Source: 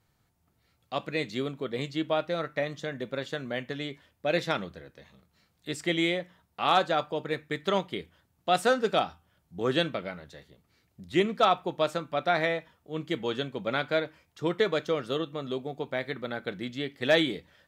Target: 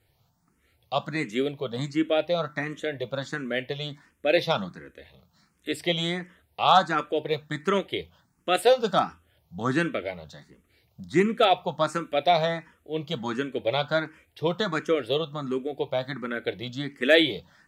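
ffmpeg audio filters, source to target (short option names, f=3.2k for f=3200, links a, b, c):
-filter_complex "[0:a]asettb=1/sr,asplit=3[a][b][c];[a]atrim=end=11.944[d];[b]atrim=start=11.94:end=12.36,asetpts=PTS-STARTPTS,afade=t=in:d=0.004:c=qsin,afade=t=out:st=0.416:d=0.004:c=qsin,highshelf=f=4.3k:g=5.5[e];[c]atrim=start=12.356[f];[d][e]acrossfade=d=0.004:c1=hsin:c2=qsin[g];[g][f]acrossfade=d=0.004:c1=qsin:c2=hsin,asplit=2[h][i];[i]afreqshift=1.4[j];[h][j]amix=inputs=2:normalize=1,volume=6.5dB"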